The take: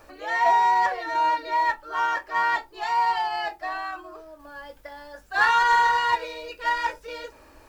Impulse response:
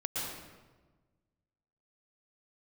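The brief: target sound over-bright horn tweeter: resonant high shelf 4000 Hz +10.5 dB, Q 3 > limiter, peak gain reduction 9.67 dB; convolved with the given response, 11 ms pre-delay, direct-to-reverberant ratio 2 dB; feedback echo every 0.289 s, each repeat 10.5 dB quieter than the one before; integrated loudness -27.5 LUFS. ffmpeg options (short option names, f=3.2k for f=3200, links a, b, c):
-filter_complex "[0:a]aecho=1:1:289|578|867:0.299|0.0896|0.0269,asplit=2[a][b];[1:a]atrim=start_sample=2205,adelay=11[c];[b][c]afir=irnorm=-1:irlink=0,volume=-6.5dB[d];[a][d]amix=inputs=2:normalize=0,highshelf=f=4k:t=q:w=3:g=10.5,volume=-1.5dB,alimiter=limit=-19dB:level=0:latency=1"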